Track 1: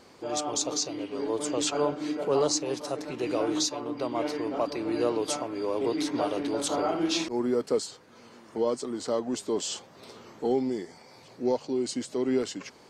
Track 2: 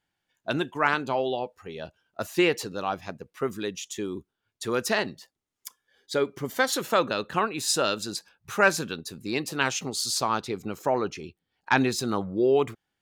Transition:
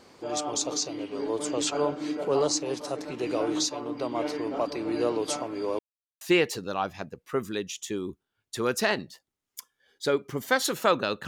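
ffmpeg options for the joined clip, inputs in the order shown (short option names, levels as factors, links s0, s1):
-filter_complex "[0:a]apad=whole_dur=11.27,atrim=end=11.27,asplit=2[s0][s1];[s0]atrim=end=5.79,asetpts=PTS-STARTPTS,afade=t=out:st=5.786:d=0.004:c=hsin[s2];[s1]atrim=start=5.79:end=6.21,asetpts=PTS-STARTPTS,volume=0[s3];[1:a]atrim=start=2.29:end=7.35,asetpts=PTS-STARTPTS,afade=t=in:d=0.004:c=hsin[s4];[s2][s3][s4]concat=n=3:v=0:a=1"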